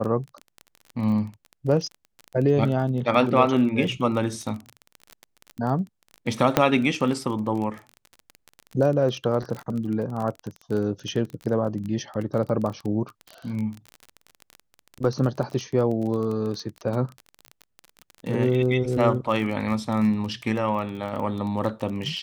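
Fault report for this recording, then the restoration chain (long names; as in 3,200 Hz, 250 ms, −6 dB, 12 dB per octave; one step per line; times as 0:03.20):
surface crackle 27 per second −29 dBFS
0:06.57: click −3 dBFS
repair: click removal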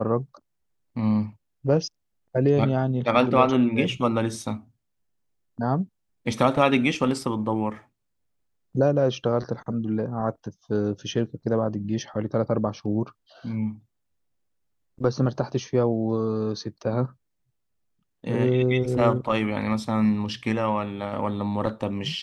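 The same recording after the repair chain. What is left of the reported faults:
none of them is left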